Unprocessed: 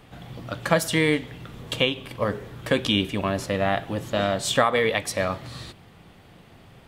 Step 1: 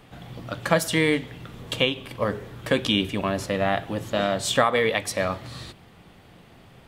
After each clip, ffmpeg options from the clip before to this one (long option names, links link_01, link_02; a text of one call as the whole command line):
ffmpeg -i in.wav -af "bandreject=frequency=50:width_type=h:width=6,bandreject=frequency=100:width_type=h:width=6,bandreject=frequency=150:width_type=h:width=6" out.wav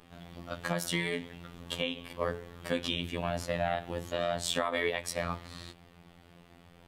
ffmpeg -i in.wav -af "alimiter=limit=-12dB:level=0:latency=1:release=134,afftfilt=real='hypot(re,im)*cos(PI*b)':imag='0':win_size=2048:overlap=0.75,volume=-3dB" out.wav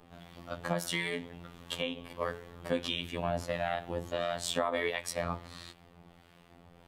ffmpeg -i in.wav -filter_complex "[0:a]acrossover=split=1100[link_01][link_02];[link_01]aeval=exprs='val(0)*(1-0.5/2+0.5/2*cos(2*PI*1.5*n/s))':channel_layout=same[link_03];[link_02]aeval=exprs='val(0)*(1-0.5/2-0.5/2*cos(2*PI*1.5*n/s))':channel_layout=same[link_04];[link_03][link_04]amix=inputs=2:normalize=0,acrossover=split=1100[link_05][link_06];[link_05]crystalizer=i=9.5:c=0[link_07];[link_07][link_06]amix=inputs=2:normalize=0" out.wav